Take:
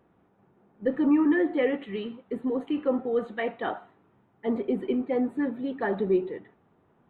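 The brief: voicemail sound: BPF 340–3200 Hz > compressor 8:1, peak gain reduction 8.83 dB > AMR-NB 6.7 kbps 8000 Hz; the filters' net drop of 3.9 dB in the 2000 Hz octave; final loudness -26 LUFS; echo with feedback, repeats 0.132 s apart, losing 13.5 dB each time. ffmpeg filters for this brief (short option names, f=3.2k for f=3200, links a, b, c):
-af "highpass=340,lowpass=3.2k,equalizer=f=2k:t=o:g=-4,aecho=1:1:132|264:0.211|0.0444,acompressor=threshold=-29dB:ratio=8,volume=10dB" -ar 8000 -c:a libopencore_amrnb -b:a 6700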